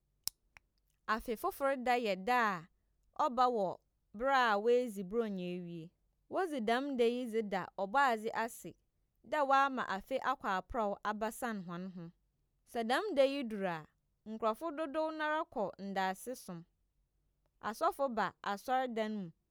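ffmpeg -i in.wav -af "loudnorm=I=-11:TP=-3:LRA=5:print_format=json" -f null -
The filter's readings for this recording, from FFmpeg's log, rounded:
"input_i" : "-35.8",
"input_tp" : "-12.7",
"input_lra" : "4.4",
"input_thresh" : "-46.4",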